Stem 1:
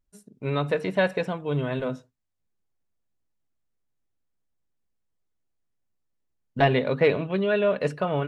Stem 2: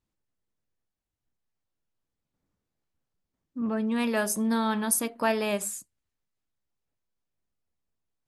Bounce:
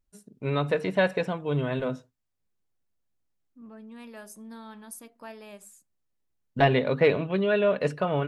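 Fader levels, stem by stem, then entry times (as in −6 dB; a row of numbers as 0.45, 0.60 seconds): −0.5, −17.5 decibels; 0.00, 0.00 seconds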